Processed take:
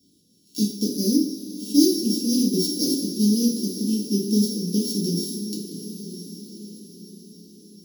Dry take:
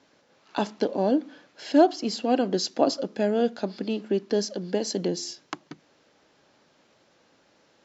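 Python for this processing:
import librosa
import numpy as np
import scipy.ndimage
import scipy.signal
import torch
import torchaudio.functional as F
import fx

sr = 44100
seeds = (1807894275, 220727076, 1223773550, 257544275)

y = np.r_[np.sort(x[:len(x) // 8 * 8].reshape(-1, 8), axis=1).ravel(), x[len(x) // 8 * 8:]]
y = scipy.signal.sosfilt(scipy.signal.cheby2(4, 60, [750.0, 1800.0], 'bandstop', fs=sr, output='sos'), y)
y = fx.echo_diffused(y, sr, ms=1072, feedback_pct=41, wet_db=-12)
y = fx.rev_double_slope(y, sr, seeds[0], early_s=0.47, late_s=3.2, knee_db=-16, drr_db=-4.0)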